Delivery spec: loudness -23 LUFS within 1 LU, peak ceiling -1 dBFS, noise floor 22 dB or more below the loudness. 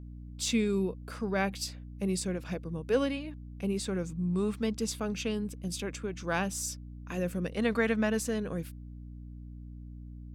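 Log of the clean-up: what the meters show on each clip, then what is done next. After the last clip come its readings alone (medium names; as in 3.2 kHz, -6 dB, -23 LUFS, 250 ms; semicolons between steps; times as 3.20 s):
hum 60 Hz; highest harmonic 300 Hz; hum level -41 dBFS; loudness -32.5 LUFS; peak level -14.5 dBFS; loudness target -23.0 LUFS
-> hum notches 60/120/180/240/300 Hz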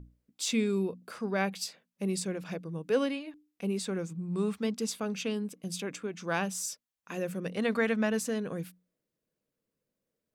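hum not found; loudness -33.0 LUFS; peak level -15.5 dBFS; loudness target -23.0 LUFS
-> trim +10 dB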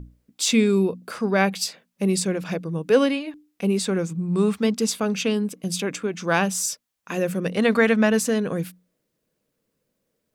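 loudness -23.0 LUFS; peak level -5.5 dBFS; noise floor -77 dBFS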